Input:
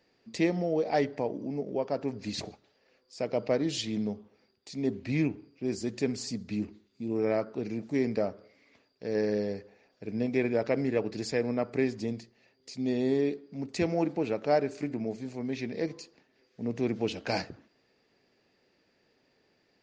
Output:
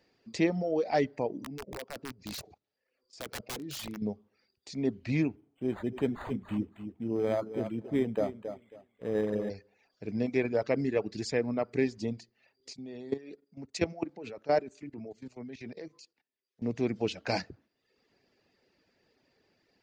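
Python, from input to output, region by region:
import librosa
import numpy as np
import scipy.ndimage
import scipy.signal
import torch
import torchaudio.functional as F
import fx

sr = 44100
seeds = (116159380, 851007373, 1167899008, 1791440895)

y = fx.chain(x, sr, fx.level_steps(step_db=13),
    fx.overflow_wrap(gain_db=32.0), at=(1.44, 4.02))
y = fx.chain(y, sr, fx.echo_feedback(ms=272, feedback_pct=24, wet_db=-8.5),
    fx.resample_linear(factor=8), at=(5.36, 9.5))
y = fx.chain(y, sr, fx.low_shelf(hz=200.0, db=-4.0),
    fx.level_steps(step_db=13),
    fx.band_widen(depth_pct=40), at=(12.73, 16.62))
y = fx.dereverb_blind(y, sr, rt60_s=0.71)
y = fx.peak_eq(y, sr, hz=65.0, db=4.0, octaves=1.3)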